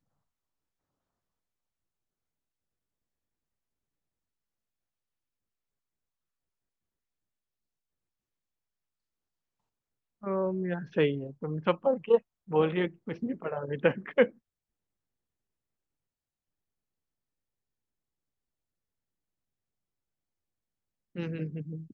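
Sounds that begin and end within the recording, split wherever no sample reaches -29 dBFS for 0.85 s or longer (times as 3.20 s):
10.26–14.25 s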